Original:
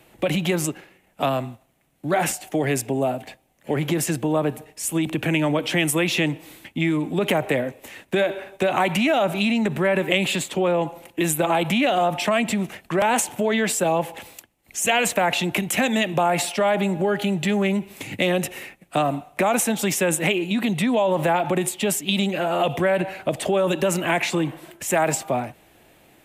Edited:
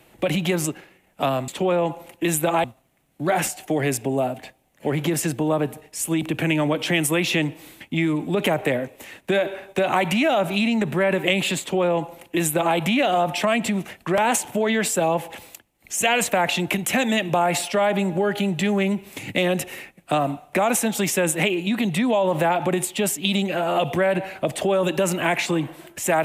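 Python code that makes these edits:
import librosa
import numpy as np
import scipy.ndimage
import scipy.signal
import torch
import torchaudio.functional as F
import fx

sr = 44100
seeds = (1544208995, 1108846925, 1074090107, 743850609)

y = fx.edit(x, sr, fx.duplicate(start_s=10.44, length_s=1.16, to_s=1.48), tone=tone)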